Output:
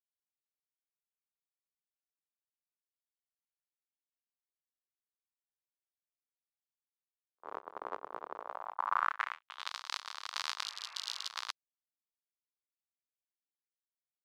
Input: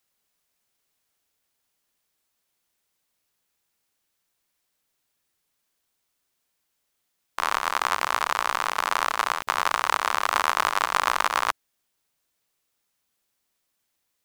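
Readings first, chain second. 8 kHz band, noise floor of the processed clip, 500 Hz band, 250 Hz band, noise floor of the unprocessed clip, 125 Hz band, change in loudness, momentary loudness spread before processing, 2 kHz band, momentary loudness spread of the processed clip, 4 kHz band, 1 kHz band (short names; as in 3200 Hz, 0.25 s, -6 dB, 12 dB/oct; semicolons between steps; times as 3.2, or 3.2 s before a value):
-15.0 dB, under -85 dBFS, -15.0 dB, -17.0 dB, -77 dBFS, n/a, -14.5 dB, 4 LU, -16.5 dB, 13 LU, -9.5 dB, -15.5 dB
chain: gate -23 dBFS, range -49 dB; band-pass sweep 430 Hz -> 4500 Hz, 8.35–9.74; spectral repair 10.66–11.26, 490–2800 Hz after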